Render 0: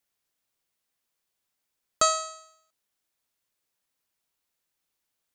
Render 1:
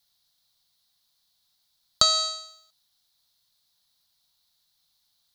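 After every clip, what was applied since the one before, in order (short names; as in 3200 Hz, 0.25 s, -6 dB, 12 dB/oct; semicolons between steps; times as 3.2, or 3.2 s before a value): compressor 10:1, threshold -25 dBFS, peak gain reduction 9 dB; EQ curve 160 Hz 0 dB, 400 Hz -17 dB, 740 Hz -3 dB, 2600 Hz -8 dB, 4000 Hz +13 dB, 7200 Hz -4 dB, 11000 Hz -1 dB; gain +8.5 dB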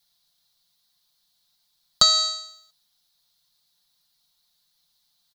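comb 5.7 ms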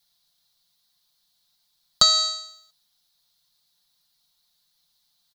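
nothing audible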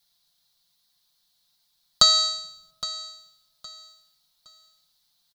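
feedback echo 0.815 s, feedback 28%, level -15.5 dB; on a send at -19.5 dB: reverb RT60 1.3 s, pre-delay 3 ms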